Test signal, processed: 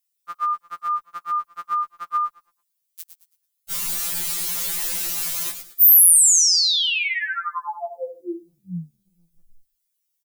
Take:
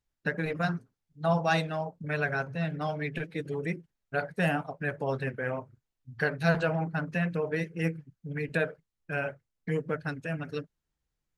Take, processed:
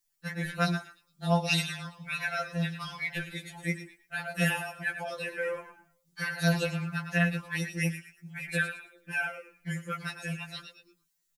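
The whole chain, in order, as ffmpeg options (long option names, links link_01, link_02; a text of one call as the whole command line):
ffmpeg -i in.wav -filter_complex "[0:a]asplit=5[link_01][link_02][link_03][link_04][link_05];[link_02]adelay=110,afreqshift=-33,volume=-9dB[link_06];[link_03]adelay=220,afreqshift=-66,volume=-19.2dB[link_07];[link_04]adelay=330,afreqshift=-99,volume=-29.3dB[link_08];[link_05]adelay=440,afreqshift=-132,volume=-39.5dB[link_09];[link_01][link_06][link_07][link_08][link_09]amix=inputs=5:normalize=0,crystalizer=i=9:c=0,afftfilt=real='re*2.83*eq(mod(b,8),0)':imag='im*2.83*eq(mod(b,8),0)':win_size=2048:overlap=0.75,volume=-4.5dB" out.wav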